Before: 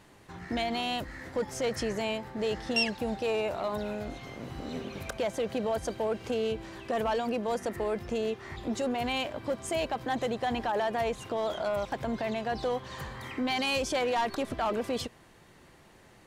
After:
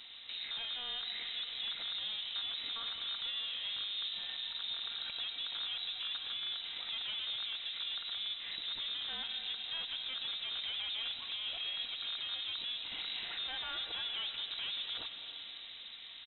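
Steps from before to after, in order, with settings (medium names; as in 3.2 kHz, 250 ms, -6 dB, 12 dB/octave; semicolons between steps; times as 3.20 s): rattle on loud lows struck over -36 dBFS, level -23 dBFS; treble shelf 2 kHz -10.5 dB; comb 4.4 ms, depth 37%; in parallel at +2 dB: compression, threshold -45 dBFS, peak gain reduction 18.5 dB; on the sum: peak limiter -29.5 dBFS, peak gain reduction 12 dB; one-sided clip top -49.5 dBFS, bottom -32.5 dBFS; on a send at -5.5 dB: reverberation RT60 5.0 s, pre-delay 93 ms; on the sum: frequency inversion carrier 3.9 kHz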